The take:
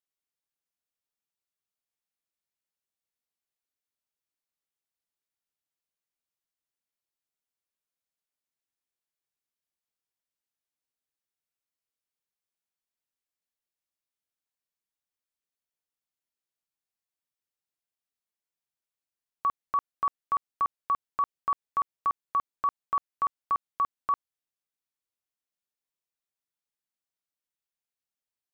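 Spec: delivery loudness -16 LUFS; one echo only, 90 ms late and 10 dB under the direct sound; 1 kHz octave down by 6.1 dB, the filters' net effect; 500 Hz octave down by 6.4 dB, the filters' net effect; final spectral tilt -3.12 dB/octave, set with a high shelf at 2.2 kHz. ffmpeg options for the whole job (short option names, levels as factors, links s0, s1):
-af "equalizer=f=500:t=o:g=-6.5,equalizer=f=1000:t=o:g=-4.5,highshelf=f=2200:g=-5.5,aecho=1:1:90:0.316,volume=10.6"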